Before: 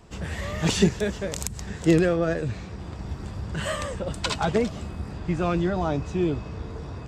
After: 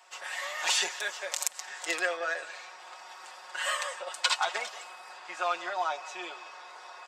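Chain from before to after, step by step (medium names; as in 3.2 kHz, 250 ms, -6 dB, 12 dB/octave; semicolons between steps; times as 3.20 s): high-pass 760 Hz 24 dB/octave; comb 5.5 ms, depth 71%; speakerphone echo 180 ms, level -17 dB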